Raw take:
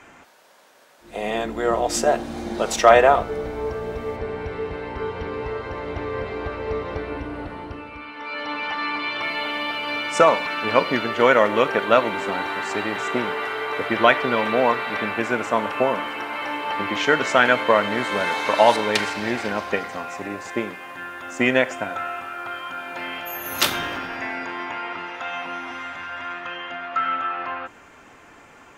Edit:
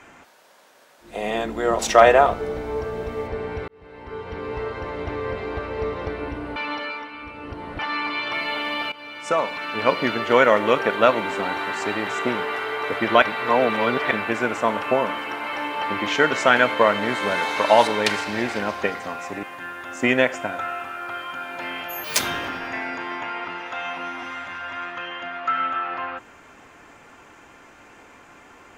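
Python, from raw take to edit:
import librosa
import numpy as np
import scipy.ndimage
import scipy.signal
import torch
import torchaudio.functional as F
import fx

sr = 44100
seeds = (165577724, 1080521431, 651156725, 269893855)

y = fx.edit(x, sr, fx.cut(start_s=1.79, length_s=0.89),
    fx.fade_in_span(start_s=4.57, length_s=0.92),
    fx.reverse_span(start_s=7.45, length_s=1.23),
    fx.fade_in_from(start_s=9.81, length_s=1.19, floor_db=-16.0),
    fx.reverse_span(start_s=14.11, length_s=0.89),
    fx.cut(start_s=20.32, length_s=0.48),
    fx.speed_span(start_s=23.41, length_s=0.27, speed=1.73), tone=tone)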